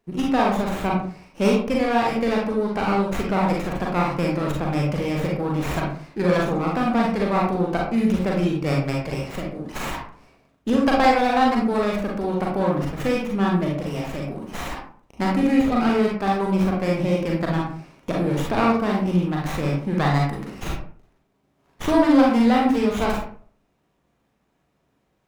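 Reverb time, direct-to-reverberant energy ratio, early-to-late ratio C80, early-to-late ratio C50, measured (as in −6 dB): 0.45 s, −2.5 dB, 7.5 dB, 2.0 dB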